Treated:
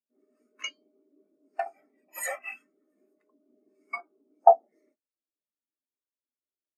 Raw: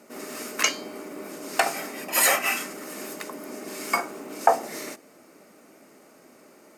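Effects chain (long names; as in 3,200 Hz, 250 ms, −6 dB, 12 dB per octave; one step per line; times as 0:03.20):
every bin expanded away from the loudest bin 2.5 to 1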